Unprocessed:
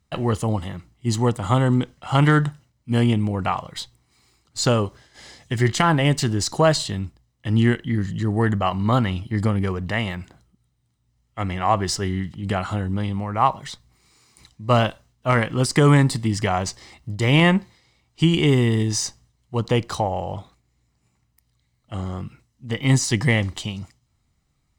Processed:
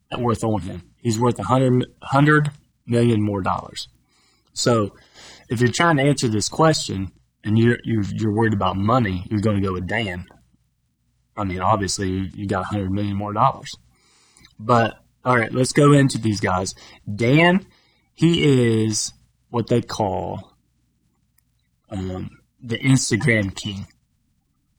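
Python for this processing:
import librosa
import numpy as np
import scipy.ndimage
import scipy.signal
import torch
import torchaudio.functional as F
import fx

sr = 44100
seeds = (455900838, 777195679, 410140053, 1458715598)

y = fx.spec_quant(x, sr, step_db=30)
y = y * 10.0 ** (2.0 / 20.0)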